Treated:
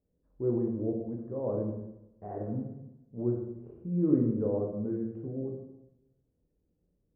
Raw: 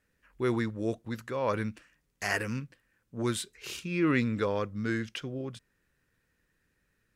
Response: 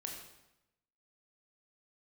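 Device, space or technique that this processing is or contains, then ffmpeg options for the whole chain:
next room: -filter_complex "[0:a]lowpass=frequency=640:width=0.5412,lowpass=frequency=640:width=1.3066[link_01];[1:a]atrim=start_sample=2205[link_02];[link_01][link_02]afir=irnorm=-1:irlink=0,volume=2dB"

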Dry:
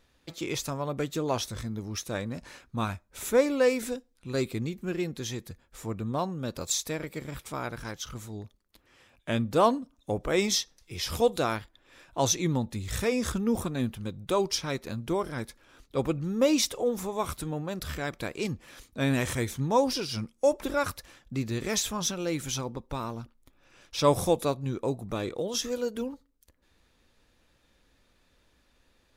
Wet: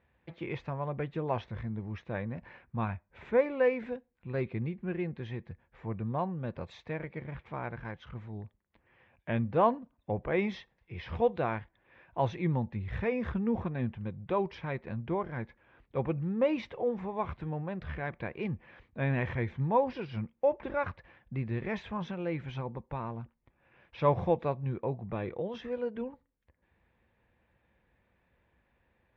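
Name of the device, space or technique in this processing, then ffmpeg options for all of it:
bass cabinet: -af "highpass=61,equalizer=frequency=280:width_type=q:width=4:gain=-10,equalizer=frequency=420:width_type=q:width=4:gain=-4,equalizer=frequency=600:width_type=q:width=4:gain=-3,equalizer=frequency=1300:width_type=q:width=4:gain=-9,lowpass=frequency=2200:width=0.5412,lowpass=frequency=2200:width=1.3066"

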